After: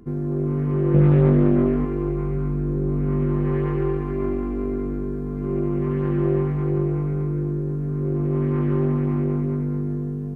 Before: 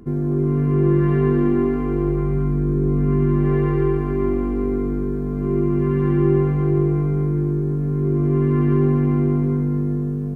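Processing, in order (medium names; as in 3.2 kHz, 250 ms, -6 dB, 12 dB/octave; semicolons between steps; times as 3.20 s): 0.94–1.85 s: peaking EQ 100 Hz +9.5 dB 2.6 oct; loudspeaker Doppler distortion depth 0.46 ms; trim -4 dB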